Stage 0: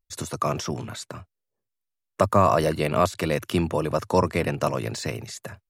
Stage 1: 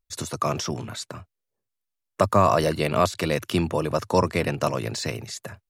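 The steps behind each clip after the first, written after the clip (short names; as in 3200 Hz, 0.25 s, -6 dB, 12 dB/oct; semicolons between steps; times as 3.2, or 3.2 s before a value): dynamic EQ 4500 Hz, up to +4 dB, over -41 dBFS, Q 1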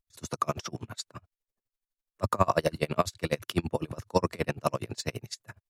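dB-linear tremolo 12 Hz, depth 32 dB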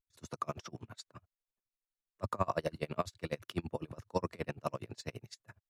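high shelf 5400 Hz -7 dB; gain -8.5 dB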